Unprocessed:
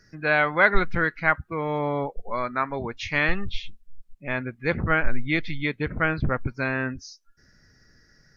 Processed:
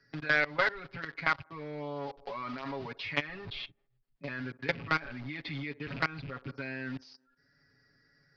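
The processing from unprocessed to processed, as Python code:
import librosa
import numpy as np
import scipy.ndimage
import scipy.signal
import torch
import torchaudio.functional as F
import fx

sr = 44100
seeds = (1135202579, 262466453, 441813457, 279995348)

p1 = fx.rattle_buzz(x, sr, strikes_db=-28.0, level_db=-25.0)
p2 = fx.highpass(p1, sr, hz=94.0, slope=6)
p3 = fx.low_shelf(p2, sr, hz=150.0, db=-2.5)
p4 = fx.echo_wet_bandpass(p3, sr, ms=62, feedback_pct=59, hz=570.0, wet_db=-21.5)
p5 = fx.quant_companded(p4, sr, bits=2)
p6 = p4 + (p5 * librosa.db_to_amplitude(-9.5))
p7 = scipy.signal.sosfilt(scipy.signal.ellip(4, 1.0, 60, 4800.0, 'lowpass', fs=sr, output='sos'), p6)
p8 = fx.level_steps(p7, sr, step_db=19)
p9 = p8 + 0.9 * np.pad(p8, (int(7.2 * sr / 1000.0), 0))[:len(p8)]
p10 = fx.band_squash(p9, sr, depth_pct=40)
y = p10 * librosa.db_to_amplitude(-6.5)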